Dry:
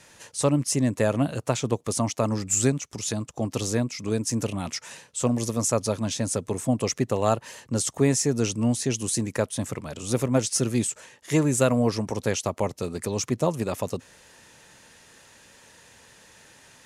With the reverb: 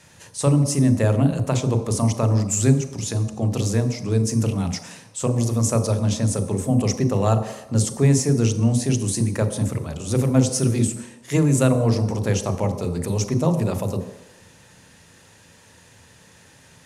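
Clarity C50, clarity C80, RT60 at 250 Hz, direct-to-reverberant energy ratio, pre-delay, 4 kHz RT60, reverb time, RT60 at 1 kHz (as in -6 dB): 10.5 dB, 12.0 dB, 0.80 s, 8.0 dB, 32 ms, 1.0 s, 1.0 s, 1.1 s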